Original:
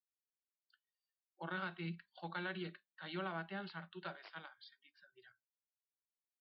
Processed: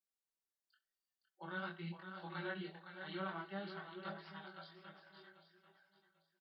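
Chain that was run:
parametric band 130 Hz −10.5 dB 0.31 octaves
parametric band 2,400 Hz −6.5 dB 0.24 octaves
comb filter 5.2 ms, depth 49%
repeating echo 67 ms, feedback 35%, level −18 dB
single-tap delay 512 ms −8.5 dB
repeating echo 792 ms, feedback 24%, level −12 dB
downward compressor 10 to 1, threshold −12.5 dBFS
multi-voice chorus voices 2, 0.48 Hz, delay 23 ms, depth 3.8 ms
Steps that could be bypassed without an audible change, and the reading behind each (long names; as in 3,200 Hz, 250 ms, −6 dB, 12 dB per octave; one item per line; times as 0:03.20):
downward compressor, threshold −12.5 dBFS: peak of its input −26.5 dBFS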